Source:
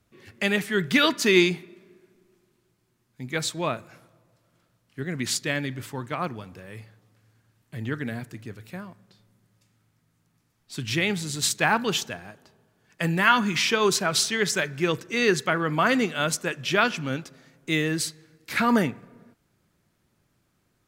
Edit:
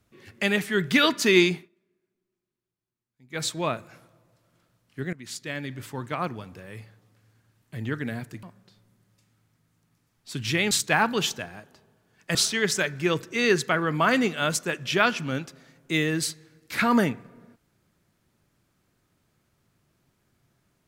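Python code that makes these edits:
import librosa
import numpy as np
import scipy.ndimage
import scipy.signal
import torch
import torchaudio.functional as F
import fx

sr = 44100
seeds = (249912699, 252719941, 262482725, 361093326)

y = fx.edit(x, sr, fx.fade_down_up(start_s=1.55, length_s=1.88, db=-20.0, fade_s=0.14),
    fx.fade_in_from(start_s=5.13, length_s=0.92, floor_db=-19.0),
    fx.cut(start_s=8.43, length_s=0.43),
    fx.cut(start_s=11.14, length_s=0.28),
    fx.cut(start_s=13.06, length_s=1.07), tone=tone)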